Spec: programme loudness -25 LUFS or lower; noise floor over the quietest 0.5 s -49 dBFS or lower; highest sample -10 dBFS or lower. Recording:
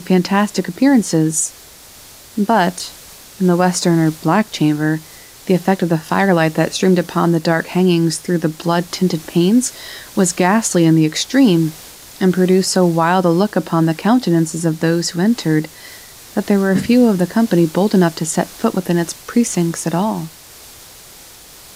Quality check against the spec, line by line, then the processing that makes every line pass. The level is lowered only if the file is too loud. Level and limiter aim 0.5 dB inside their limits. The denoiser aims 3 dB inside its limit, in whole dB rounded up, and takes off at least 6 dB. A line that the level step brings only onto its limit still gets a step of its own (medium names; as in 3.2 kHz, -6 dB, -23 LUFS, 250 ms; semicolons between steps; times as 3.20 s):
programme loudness -15.5 LUFS: fail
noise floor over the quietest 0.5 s -40 dBFS: fail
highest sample -3.0 dBFS: fail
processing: trim -10 dB